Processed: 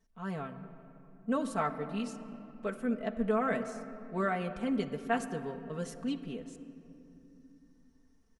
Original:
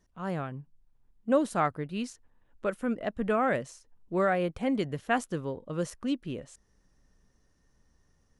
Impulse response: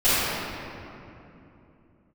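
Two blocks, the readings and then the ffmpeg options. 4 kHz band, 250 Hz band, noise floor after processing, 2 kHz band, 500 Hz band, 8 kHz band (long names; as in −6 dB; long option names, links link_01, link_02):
−4.0 dB, −2.5 dB, −65 dBFS, −4.5 dB, −5.0 dB, −4.5 dB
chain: -filter_complex "[0:a]aecho=1:1:4.5:0.89,asplit=2[link_01][link_02];[1:a]atrim=start_sample=2205,highshelf=frequency=4600:gain=-6.5[link_03];[link_02][link_03]afir=irnorm=-1:irlink=0,volume=-29.5dB[link_04];[link_01][link_04]amix=inputs=2:normalize=0,volume=-7dB"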